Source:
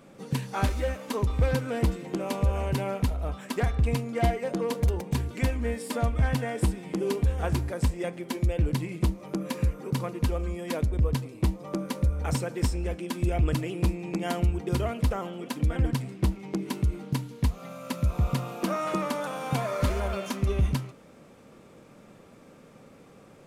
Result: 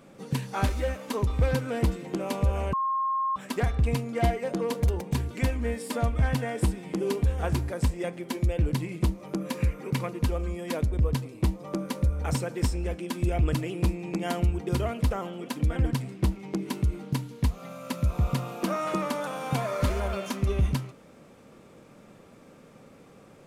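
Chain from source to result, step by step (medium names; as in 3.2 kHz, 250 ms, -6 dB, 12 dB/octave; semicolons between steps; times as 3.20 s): 2.73–3.36 s: bleep 1.07 kHz -24 dBFS; 9.60–10.07 s: peaking EQ 2.2 kHz +8 dB 0.65 oct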